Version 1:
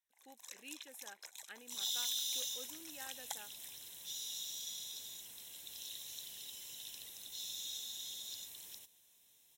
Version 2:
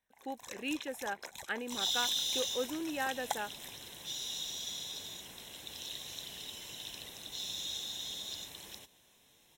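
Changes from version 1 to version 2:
speech +5.0 dB; first sound: remove weighting filter A; master: remove pre-emphasis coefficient 0.8

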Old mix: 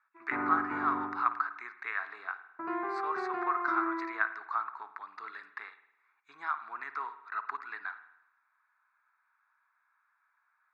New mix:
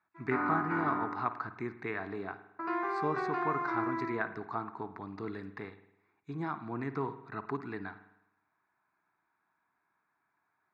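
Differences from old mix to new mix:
speech: remove resonant high-pass 1300 Hz, resonance Q 2.5; background: remove air absorption 270 m

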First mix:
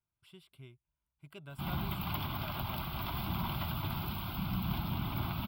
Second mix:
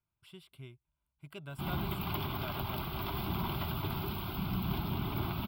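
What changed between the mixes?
speech +3.5 dB; background: add bell 400 Hz +11.5 dB 0.5 oct

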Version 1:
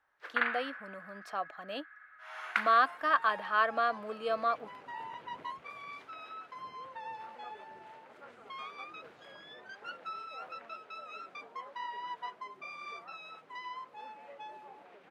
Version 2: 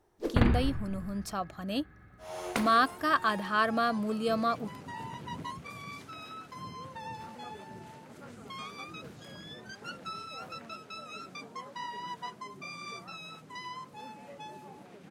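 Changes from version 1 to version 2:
first sound: remove resonant high-pass 1500 Hz, resonance Q 3.2; master: remove three-band isolator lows -21 dB, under 420 Hz, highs -18 dB, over 3400 Hz

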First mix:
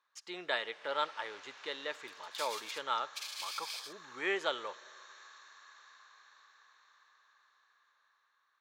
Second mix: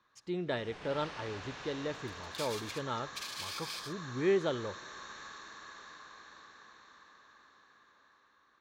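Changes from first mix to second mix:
speech -6.5 dB; first sound +6.5 dB; master: remove HPF 930 Hz 12 dB/oct

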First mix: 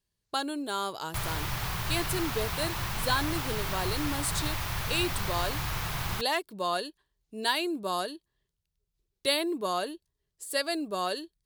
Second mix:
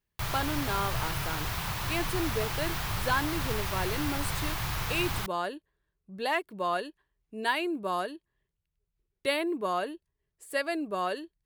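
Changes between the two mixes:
speech: add resonant high shelf 3100 Hz -8 dB, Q 1.5; background: entry -0.95 s

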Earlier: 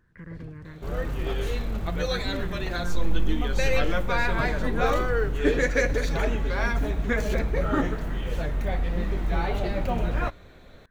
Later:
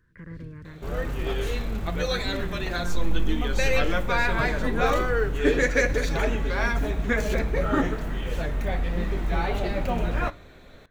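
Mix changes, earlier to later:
first sound: add Butterworth band-stop 850 Hz, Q 0.51; second sound: send +11.5 dB

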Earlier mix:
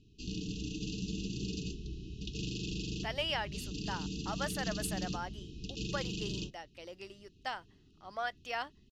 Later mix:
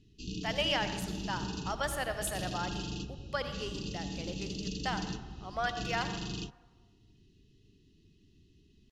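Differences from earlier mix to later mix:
speech: entry -2.60 s; reverb: on, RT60 1.3 s

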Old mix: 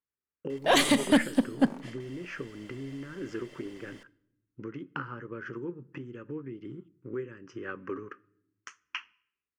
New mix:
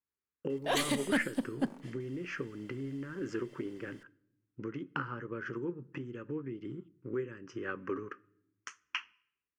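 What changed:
background -9.0 dB; master: add high shelf 8600 Hz +5.5 dB

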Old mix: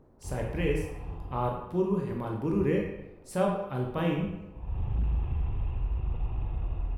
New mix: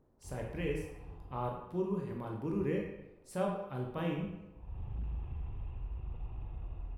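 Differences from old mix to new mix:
speech -7.0 dB; background -10.5 dB

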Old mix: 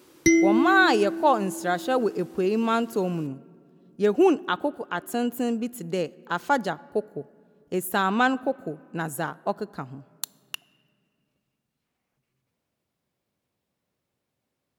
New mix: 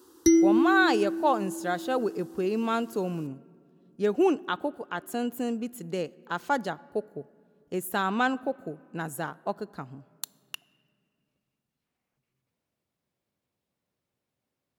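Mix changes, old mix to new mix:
speech -4.0 dB; background: add fixed phaser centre 610 Hz, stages 6

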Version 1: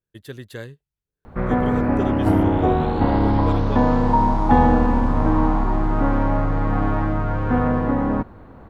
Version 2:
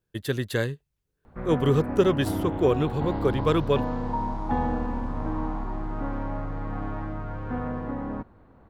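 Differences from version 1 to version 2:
speech +8.5 dB; background -11.5 dB

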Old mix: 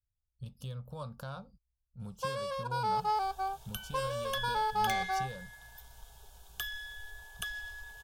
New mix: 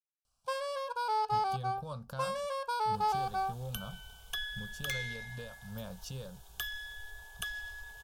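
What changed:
speech: entry +0.90 s; first sound: entry -1.75 s

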